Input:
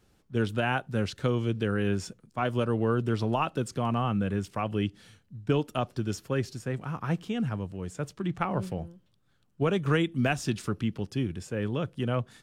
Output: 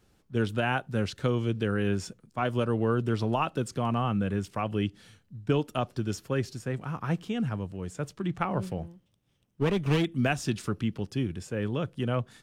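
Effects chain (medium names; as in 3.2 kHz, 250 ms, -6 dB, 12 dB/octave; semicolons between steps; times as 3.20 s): 8.83–10.05 s: comb filter that takes the minimum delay 0.33 ms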